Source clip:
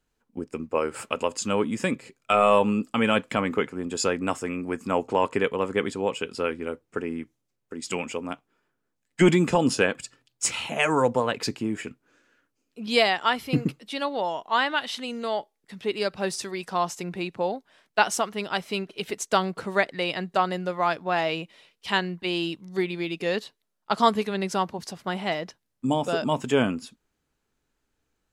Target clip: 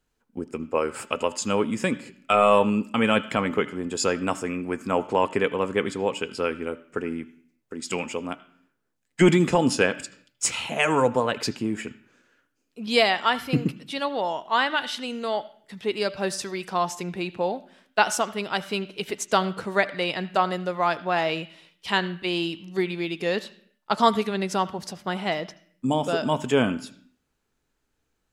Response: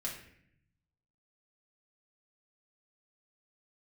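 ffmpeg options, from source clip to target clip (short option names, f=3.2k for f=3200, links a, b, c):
-filter_complex "[0:a]bandreject=f=292.4:t=h:w=4,bandreject=f=584.8:t=h:w=4,bandreject=f=877.2:t=h:w=4,bandreject=f=1.1696k:t=h:w=4,bandreject=f=1.462k:t=h:w=4,bandreject=f=1.7544k:t=h:w=4,bandreject=f=2.0468k:t=h:w=4,bandreject=f=2.3392k:t=h:w=4,bandreject=f=2.6316k:t=h:w=4,bandreject=f=2.924k:t=h:w=4,asplit=2[a][b];[b]highpass=f=130:w=0.5412,highpass=f=130:w=1.3066,equalizer=f=470:t=q:w=4:g=-8,equalizer=f=1.4k:t=q:w=4:g=5,equalizer=f=3.3k:t=q:w=4:g=7,lowpass=f=6.9k:w=0.5412,lowpass=f=6.9k:w=1.3066[c];[1:a]atrim=start_sample=2205,afade=t=out:st=0.38:d=0.01,atrim=end_sample=17199,adelay=76[d];[c][d]afir=irnorm=-1:irlink=0,volume=-20dB[e];[a][e]amix=inputs=2:normalize=0,volume=1dB"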